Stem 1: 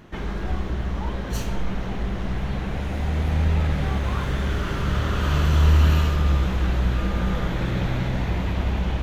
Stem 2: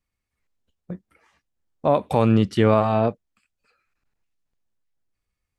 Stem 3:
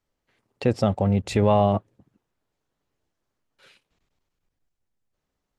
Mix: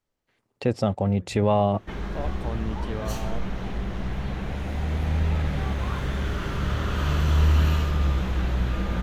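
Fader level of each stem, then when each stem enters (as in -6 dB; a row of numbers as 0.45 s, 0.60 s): -3.0 dB, -16.5 dB, -2.0 dB; 1.75 s, 0.30 s, 0.00 s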